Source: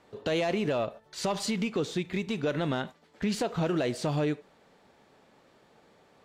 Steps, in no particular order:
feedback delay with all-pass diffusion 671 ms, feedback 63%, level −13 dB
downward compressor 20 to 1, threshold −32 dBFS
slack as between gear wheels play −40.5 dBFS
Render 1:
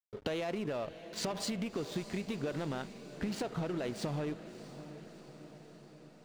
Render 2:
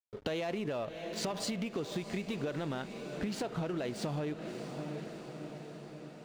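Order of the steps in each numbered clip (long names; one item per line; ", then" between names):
downward compressor, then slack as between gear wheels, then feedback delay with all-pass diffusion
slack as between gear wheels, then feedback delay with all-pass diffusion, then downward compressor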